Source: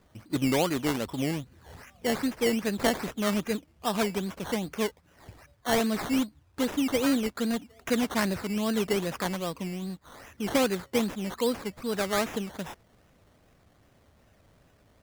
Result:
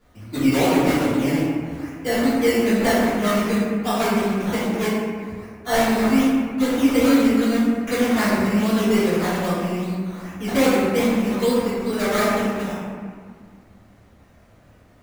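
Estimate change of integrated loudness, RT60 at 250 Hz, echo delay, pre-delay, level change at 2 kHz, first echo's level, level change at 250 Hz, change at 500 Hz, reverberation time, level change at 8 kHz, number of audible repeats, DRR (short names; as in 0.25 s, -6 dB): +9.0 dB, 2.5 s, none, 3 ms, +8.5 dB, none, +10.0 dB, +8.5 dB, 1.9 s, +5.0 dB, none, -12.5 dB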